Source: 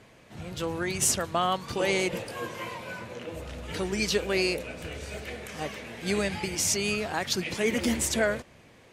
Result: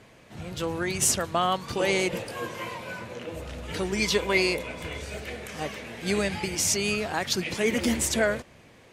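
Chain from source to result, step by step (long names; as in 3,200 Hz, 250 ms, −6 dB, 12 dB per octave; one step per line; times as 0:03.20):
0:03.96–0:05.02: hollow resonant body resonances 1,000/2,100/3,400 Hz, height 14 dB
level +1.5 dB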